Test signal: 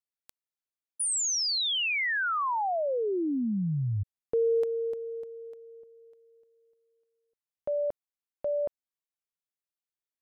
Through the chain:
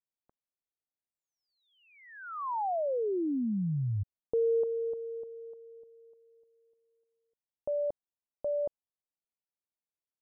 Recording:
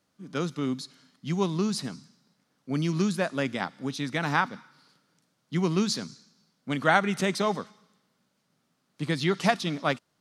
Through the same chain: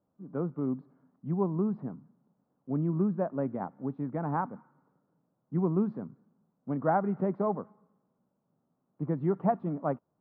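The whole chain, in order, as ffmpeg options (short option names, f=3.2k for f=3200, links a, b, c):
-af "lowpass=f=1k:w=0.5412,lowpass=f=1k:w=1.3066,volume=-2dB"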